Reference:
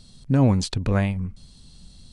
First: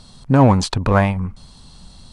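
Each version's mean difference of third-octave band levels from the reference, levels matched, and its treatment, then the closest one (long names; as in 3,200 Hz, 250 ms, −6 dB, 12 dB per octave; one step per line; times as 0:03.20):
2.0 dB: parametric band 980 Hz +12.5 dB 1.5 octaves
in parallel at −8 dB: asymmetric clip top −21 dBFS
on the sum: level +1.5 dB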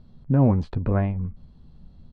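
4.5 dB: low-pass filter 1,200 Hz 12 dB per octave
double-tracking delay 13 ms −11.5 dB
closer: first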